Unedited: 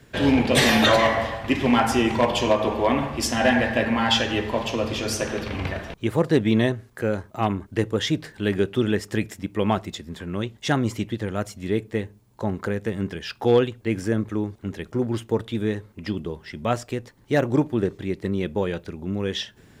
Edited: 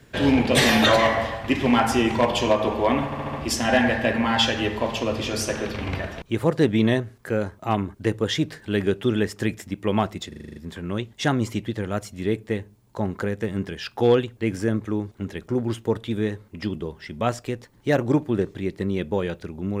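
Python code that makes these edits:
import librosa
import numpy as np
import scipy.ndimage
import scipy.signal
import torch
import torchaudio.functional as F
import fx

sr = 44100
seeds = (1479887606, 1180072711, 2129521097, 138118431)

y = fx.edit(x, sr, fx.stutter(start_s=3.05, slice_s=0.07, count=5),
    fx.stutter(start_s=10.0, slice_s=0.04, count=8), tone=tone)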